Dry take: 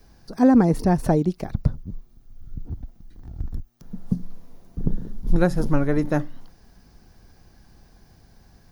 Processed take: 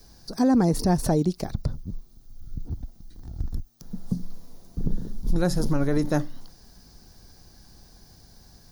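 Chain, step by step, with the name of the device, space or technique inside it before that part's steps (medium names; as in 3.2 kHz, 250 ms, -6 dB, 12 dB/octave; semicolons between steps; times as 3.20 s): over-bright horn tweeter (resonant high shelf 3.4 kHz +7 dB, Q 1.5; peak limiter -13.5 dBFS, peak gain reduction 8 dB)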